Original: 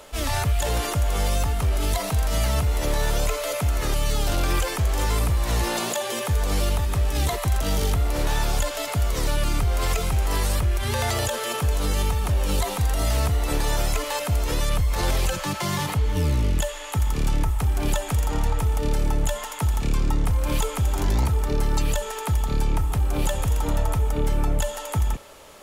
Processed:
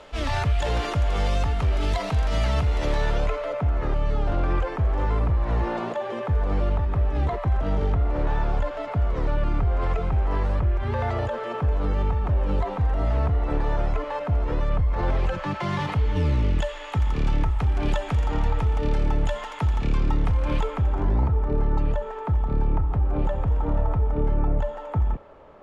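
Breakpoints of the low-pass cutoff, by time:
2.91 s 3.7 kHz
3.55 s 1.4 kHz
14.98 s 1.4 kHz
16.00 s 3.1 kHz
20.36 s 3.1 kHz
21.12 s 1.2 kHz

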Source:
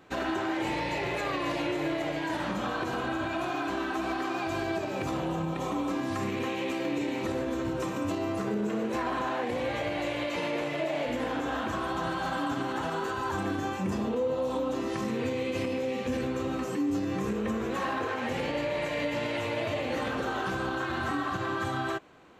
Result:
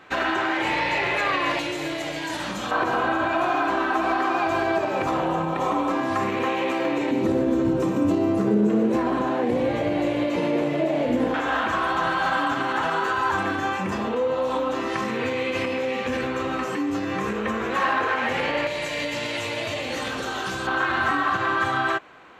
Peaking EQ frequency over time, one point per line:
peaking EQ +11.5 dB 3 oct
1.8 kHz
from 1.59 s 7.4 kHz
from 2.71 s 1 kHz
from 7.11 s 250 Hz
from 11.34 s 1.6 kHz
from 18.67 s 6.6 kHz
from 20.67 s 1.6 kHz

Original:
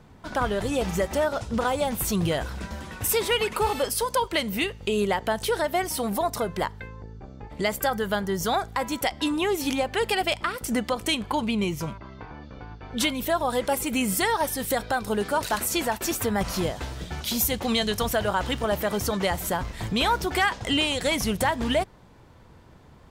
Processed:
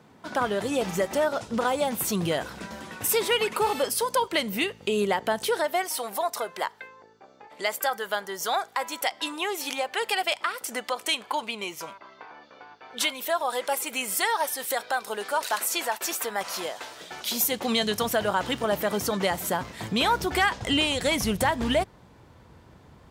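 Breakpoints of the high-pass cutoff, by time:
5.35 s 180 Hz
5.90 s 580 Hz
16.94 s 580 Hz
17.87 s 150 Hz
19.89 s 150 Hz
20.45 s 49 Hz

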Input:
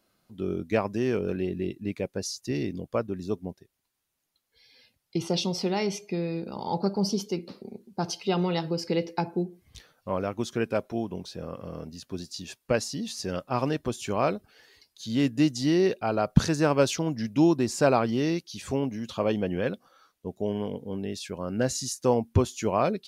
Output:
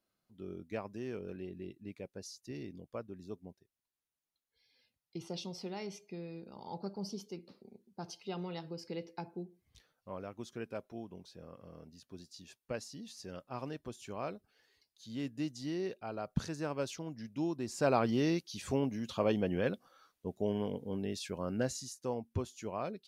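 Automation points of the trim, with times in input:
17.54 s -14.5 dB
18.05 s -4.5 dB
21.49 s -4.5 dB
21.92 s -14 dB

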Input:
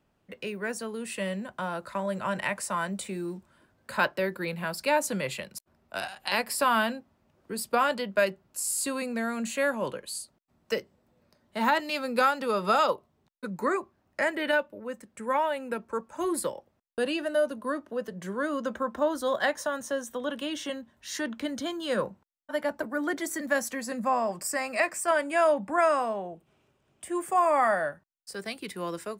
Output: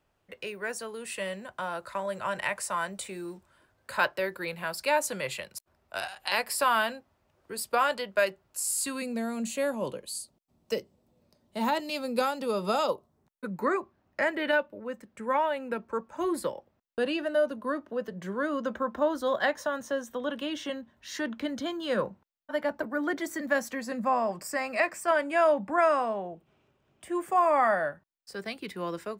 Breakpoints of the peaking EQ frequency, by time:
peaking EQ -9.5 dB 1.2 oct
8.67 s 210 Hz
9.16 s 1.6 kHz
12.90 s 1.6 kHz
13.70 s 9.8 kHz

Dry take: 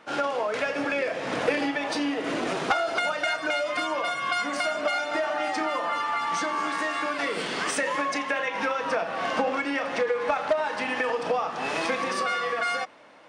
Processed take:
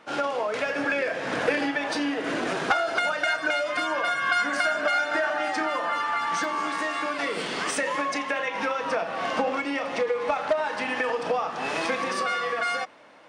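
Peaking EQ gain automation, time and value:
peaking EQ 1.6 kHz 0.23 oct
-1.5 dB
from 0.69 s +7 dB
from 3.87 s +14.5 dB
from 5.30 s +7.5 dB
from 6.44 s -1.5 dB
from 9.60 s -8 dB
from 10.38 s +1 dB

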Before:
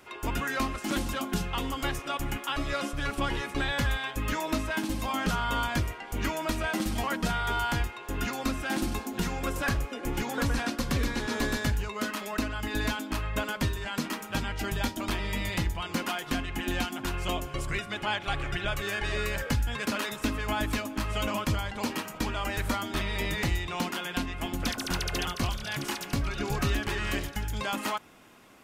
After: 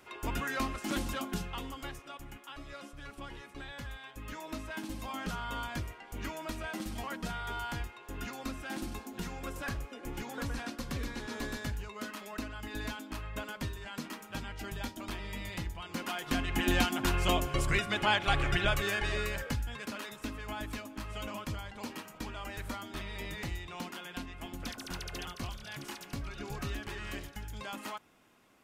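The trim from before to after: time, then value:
1.16 s -4 dB
2.25 s -15.5 dB
3.94 s -15.5 dB
4.86 s -9 dB
15.86 s -9 dB
16.60 s +2.5 dB
18.63 s +2.5 dB
19.87 s -10 dB

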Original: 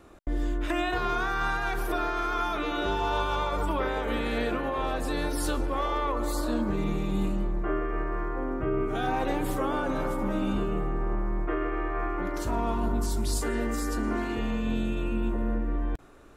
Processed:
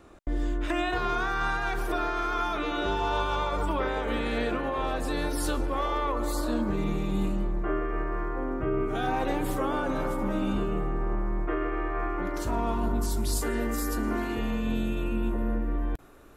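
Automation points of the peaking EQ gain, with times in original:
peaking EQ 12 kHz 0.29 oct
4.48 s -8 dB
5.29 s +0.5 dB
12.63 s +0.5 dB
13.79 s +11.5 dB

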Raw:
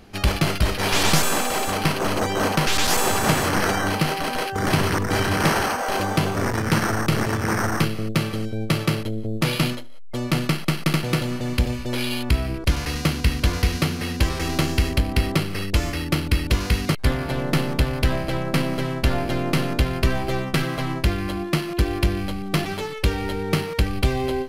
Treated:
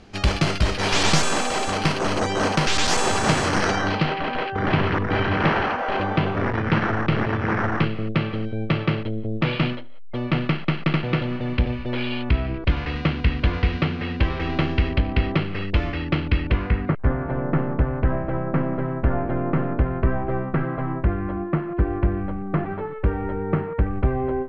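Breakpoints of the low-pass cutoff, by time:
low-pass 24 dB/octave
3.57 s 7.8 kHz
4.18 s 3.2 kHz
16.34 s 3.2 kHz
17.00 s 1.6 kHz

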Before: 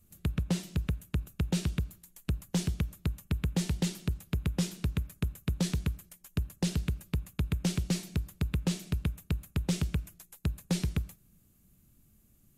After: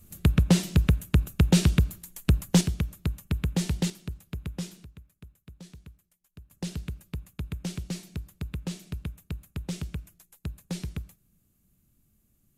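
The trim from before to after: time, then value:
+10 dB
from 2.61 s +3 dB
from 3.90 s -4.5 dB
from 4.84 s -17 dB
from 6.51 s -4 dB

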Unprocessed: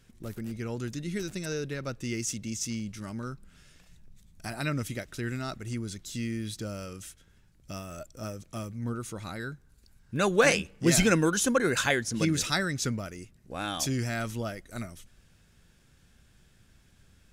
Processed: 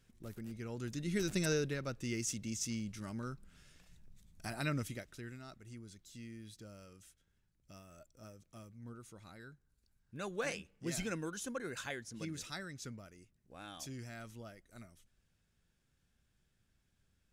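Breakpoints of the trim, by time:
0.71 s -9 dB
1.42 s +2 dB
1.85 s -5.5 dB
4.76 s -5.5 dB
5.39 s -16.5 dB

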